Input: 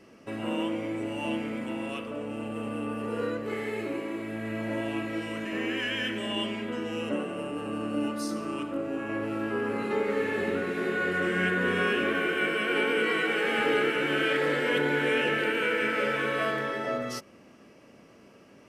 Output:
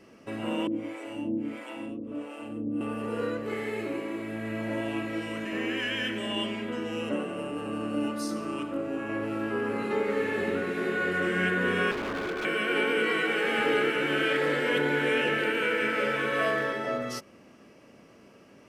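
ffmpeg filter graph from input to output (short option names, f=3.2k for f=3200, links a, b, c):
-filter_complex "[0:a]asettb=1/sr,asplit=3[a][b][c];[a]atrim=end=0.674[d];[b]atrim=start=0.67:end=2.81,asetpts=PTS-STARTPTS,afade=t=in:d=0.004:c=qsin,afade=t=out:st=2.136:d=0.004:c=qsin,equalizer=f=290:t=o:w=0.22:g=12.5,acrossover=split=470[e][f];[e]aeval=exprs='val(0)*(1-1/2+1/2*cos(2*PI*1.5*n/s))':c=same[g];[f]aeval=exprs='val(0)*(1-1/2-1/2*cos(2*PI*1.5*n/s))':c=same[h];[g][h]amix=inputs=2:normalize=0[i];[c]atrim=start=2.806[j];[d][i]acrossfade=d=0.004:c1=hsin:c2=qsin[k];[k][j]acrossfade=d=0.004:c1=qsin:c2=hsin,asettb=1/sr,asplit=3[l][m][n];[l]atrim=end=11.914[o];[m]atrim=start=11.91:end=12.45,asetpts=PTS-STARTPTS,afade=t=in:d=0.004:c=qsin,afade=t=out:st=0.536:d=0.004:c=qsin,lowpass=1.3k,aeval=exprs='0.0447*(abs(mod(val(0)/0.0447+3,4)-2)-1)':c=same[p];[n]atrim=start=12.446[q];[o][p]acrossfade=d=0.004:c1=hsin:c2=qsin[r];[r][q]acrossfade=d=0.004:c1=qsin:c2=hsin,asettb=1/sr,asplit=3[s][t][u];[s]atrim=end=16.284[v];[t]atrim=start=16.28:end=16.73,asetpts=PTS-STARTPTS,afade=t=in:d=0.004:c=qsin,afade=t=out:st=0.446:d=0.004:c=qsin,equalizer=f=130:w=7:g=-8.5,bandreject=f=350:w=6.4,asplit=2[w][x];[x]adelay=43,volume=-4dB[y];[w][y]amix=inputs=2:normalize=0,atrim=end_sample=19845[z];[u]atrim=start=16.726[aa];[v][z]acrossfade=d=0.004:c1=hsin:c2=qsin[ab];[ab][aa]acrossfade=d=0.004:c1=qsin:c2=hsin"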